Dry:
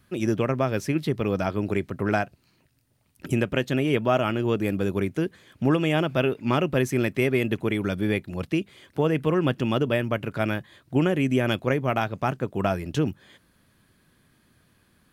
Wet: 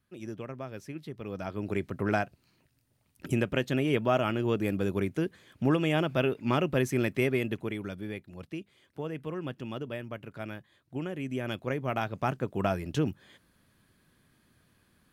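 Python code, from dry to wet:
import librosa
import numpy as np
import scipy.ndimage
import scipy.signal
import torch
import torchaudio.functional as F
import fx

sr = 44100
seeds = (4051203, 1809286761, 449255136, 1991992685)

y = fx.gain(x, sr, db=fx.line((1.14, -15.5), (1.85, -4.0), (7.24, -4.0), (8.1, -13.5), (11.07, -13.5), (12.24, -4.0)))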